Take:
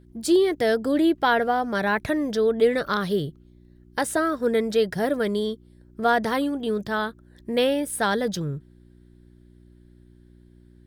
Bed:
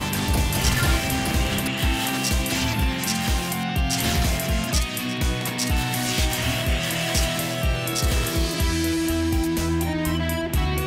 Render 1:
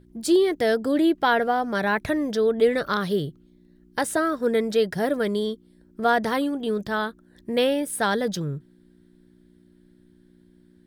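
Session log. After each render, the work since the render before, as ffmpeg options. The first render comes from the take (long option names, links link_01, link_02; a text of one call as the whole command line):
ffmpeg -i in.wav -af "bandreject=frequency=60:width_type=h:width=4,bandreject=frequency=120:width_type=h:width=4" out.wav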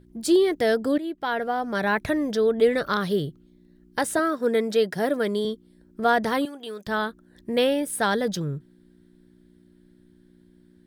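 ffmpeg -i in.wav -filter_complex "[0:a]asettb=1/sr,asplit=3[link_01][link_02][link_03];[link_01]atrim=end=4.194[link_04];[link_02]atrim=start=4.19:end=5.45,asetpts=PTS-STARTPTS,afade=type=in:duration=0.004:curve=qsin,afade=type=out:start_time=1.256:duration=0.004:curve=qsin,highpass=170[link_05];[link_03]atrim=start=5.446[link_06];[link_04][link_05]acrossfade=duration=0.004:curve1=hsin:curve2=qsin[link_07];[link_07][link_06]acrossfade=duration=0.004:curve1=qsin:curve2=hsin,asettb=1/sr,asplit=3[link_08][link_09][link_10];[link_08]atrim=end=6.454[link_11];[link_09]atrim=start=6.45:end=6.87,asetpts=PTS-STARTPTS,afade=type=in:duration=0.004:curve=qsin,afade=type=out:start_time=0.416:duration=0.004:curve=qsin,highpass=frequency=1200:poles=1[link_12];[link_10]atrim=start=6.866[link_13];[link_11][link_12]acrossfade=duration=0.004:curve1=hsin:curve2=qsin[link_14];[link_14][link_13]acrossfade=duration=0.004:curve1=qsin:curve2=hsin,asplit=2[link_15][link_16];[link_15]atrim=end=0.98,asetpts=PTS-STARTPTS,afade=type=out:start_time=0.976:duration=0.004:curve=hsin:silence=0.188365[link_17];[link_16]atrim=start=0.98,asetpts=PTS-STARTPTS,afade=type=in:duration=0.92:silence=0.188365[link_18];[link_17][link_18]concat=n=2:v=0:a=1" out.wav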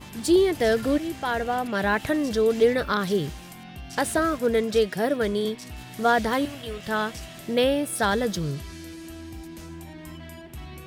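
ffmpeg -i in.wav -i bed.wav -filter_complex "[1:a]volume=-17dB[link_01];[0:a][link_01]amix=inputs=2:normalize=0" out.wav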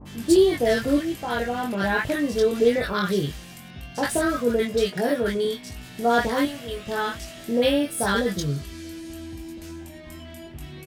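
ffmpeg -i in.wav -filter_complex "[0:a]asplit=2[link_01][link_02];[link_02]adelay=21,volume=-4dB[link_03];[link_01][link_03]amix=inputs=2:normalize=0,acrossover=split=990[link_04][link_05];[link_05]adelay=50[link_06];[link_04][link_06]amix=inputs=2:normalize=0" out.wav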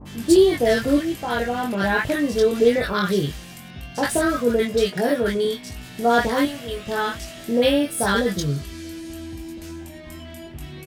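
ffmpeg -i in.wav -af "volume=2.5dB" out.wav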